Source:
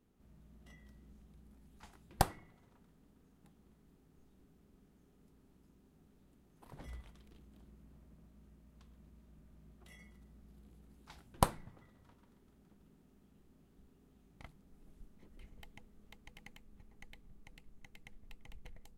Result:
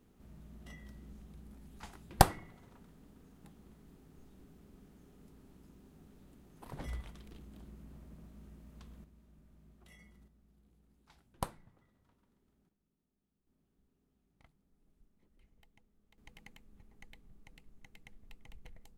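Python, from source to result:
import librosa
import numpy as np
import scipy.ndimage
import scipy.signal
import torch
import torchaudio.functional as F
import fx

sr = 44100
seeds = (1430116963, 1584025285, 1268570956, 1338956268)

y = fx.gain(x, sr, db=fx.steps((0.0, 7.5), (9.04, -1.5), (10.28, -8.5), (12.69, -19.0), (13.47, -11.5), (16.18, -0.5)))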